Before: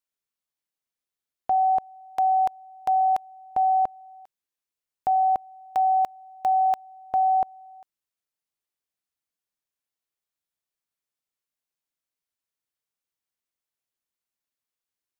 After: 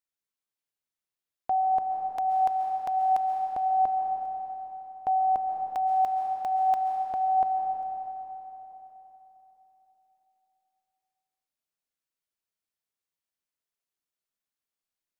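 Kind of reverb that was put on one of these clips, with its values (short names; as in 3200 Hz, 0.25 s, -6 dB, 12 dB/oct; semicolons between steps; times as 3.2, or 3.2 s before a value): digital reverb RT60 3.8 s, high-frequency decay 0.85×, pre-delay 95 ms, DRR 2 dB; gain -4 dB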